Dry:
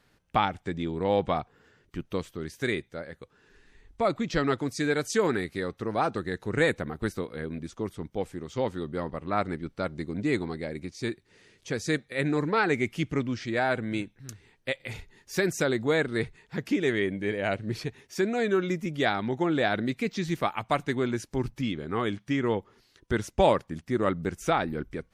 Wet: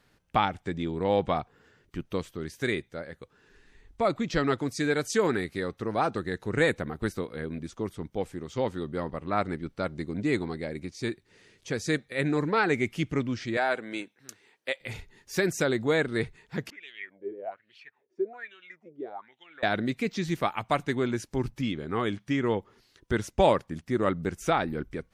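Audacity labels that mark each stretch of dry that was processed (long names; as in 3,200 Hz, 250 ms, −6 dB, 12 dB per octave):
13.570000	14.810000	high-pass filter 370 Hz
16.700000	19.630000	LFO wah 1.2 Hz 350–3,100 Hz, Q 8.6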